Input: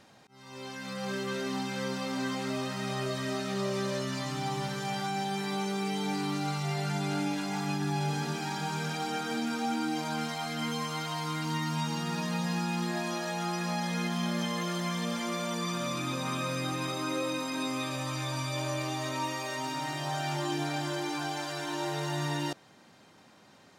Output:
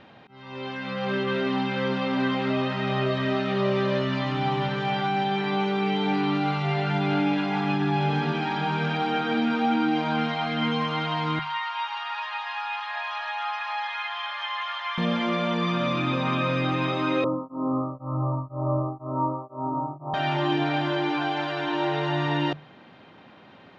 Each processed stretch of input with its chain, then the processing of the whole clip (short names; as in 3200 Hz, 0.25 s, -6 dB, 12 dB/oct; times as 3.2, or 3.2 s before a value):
11.39–14.98 steep high-pass 790 Hz 48 dB/oct + air absorption 80 m
17.24–20.14 Chebyshev low-pass 1300 Hz, order 10 + low shelf 170 Hz +4.5 dB + beating tremolo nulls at 2 Hz
whole clip: Chebyshev low-pass 3200 Hz, order 3; notches 50/100/150/200 Hz; gain +8.5 dB